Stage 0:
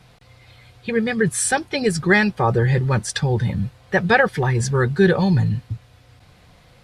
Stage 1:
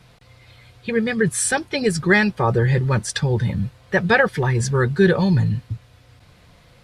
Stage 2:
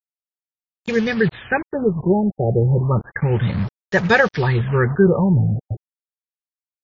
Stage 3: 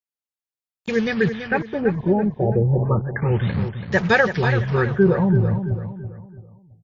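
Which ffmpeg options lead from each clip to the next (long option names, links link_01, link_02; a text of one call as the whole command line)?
ffmpeg -i in.wav -af "bandreject=frequency=770:width=12" out.wav
ffmpeg -i in.wav -af "acrusher=bits=4:mix=0:aa=0.5,afftfilt=real='re*lt(b*sr/1024,790*pow(7300/790,0.5+0.5*sin(2*PI*0.31*pts/sr)))':imag='im*lt(b*sr/1024,790*pow(7300/790,0.5+0.5*sin(2*PI*0.31*pts/sr)))':win_size=1024:overlap=0.75,volume=1.5dB" out.wav
ffmpeg -i in.wav -af "aecho=1:1:333|666|999|1332:0.355|0.131|0.0486|0.018,volume=-2dB" out.wav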